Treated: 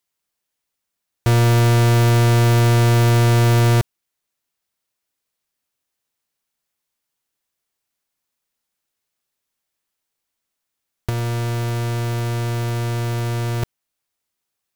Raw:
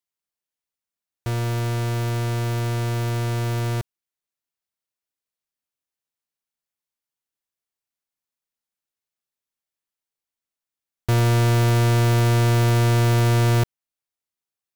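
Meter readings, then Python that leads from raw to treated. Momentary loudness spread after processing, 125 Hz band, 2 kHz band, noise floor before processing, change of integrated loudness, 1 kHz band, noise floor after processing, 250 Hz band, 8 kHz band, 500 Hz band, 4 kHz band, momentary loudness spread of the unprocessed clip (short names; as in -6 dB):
10 LU, +3.0 dB, +3.0 dB, under -85 dBFS, +3.0 dB, +3.0 dB, -80 dBFS, +3.0 dB, +3.0 dB, +3.0 dB, +3.0 dB, 9 LU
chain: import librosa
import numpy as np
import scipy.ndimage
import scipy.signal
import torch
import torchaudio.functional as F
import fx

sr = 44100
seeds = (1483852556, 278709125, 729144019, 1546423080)

y = fx.over_compress(x, sr, threshold_db=-22.0, ratio=-0.5)
y = F.gain(torch.from_numpy(y), 6.5).numpy()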